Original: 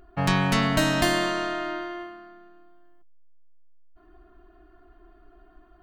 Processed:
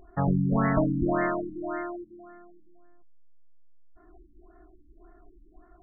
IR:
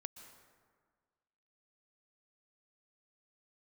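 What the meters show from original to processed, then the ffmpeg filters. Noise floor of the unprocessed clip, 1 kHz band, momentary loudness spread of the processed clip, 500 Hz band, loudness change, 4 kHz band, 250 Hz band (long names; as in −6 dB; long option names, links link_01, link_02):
−56 dBFS, −4.0 dB, 14 LU, −1.5 dB, −3.0 dB, below −40 dB, 0.0 dB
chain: -af "afftfilt=real='re*lt(b*sr/1024,320*pow(2200/320,0.5+0.5*sin(2*PI*1.8*pts/sr)))':imag='im*lt(b*sr/1024,320*pow(2200/320,0.5+0.5*sin(2*PI*1.8*pts/sr)))':win_size=1024:overlap=0.75"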